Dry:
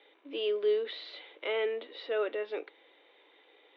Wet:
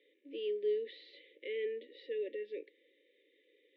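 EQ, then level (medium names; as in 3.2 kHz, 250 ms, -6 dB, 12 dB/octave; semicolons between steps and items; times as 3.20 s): brick-wall FIR band-stop 580–1700 Hz; treble shelf 2.2 kHz -9.5 dB; -5.0 dB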